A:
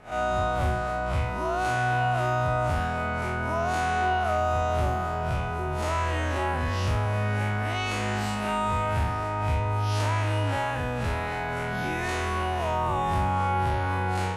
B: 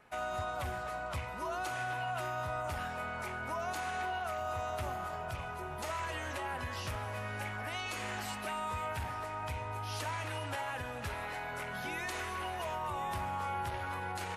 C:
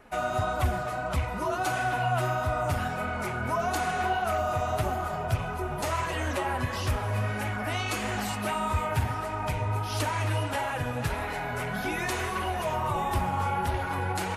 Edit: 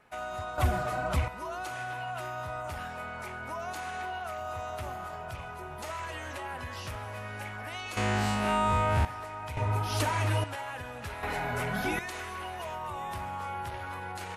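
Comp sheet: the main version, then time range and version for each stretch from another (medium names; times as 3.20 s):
B
0.58–1.28 s: from C
7.97–9.05 s: from A
9.57–10.44 s: from C
11.23–11.99 s: from C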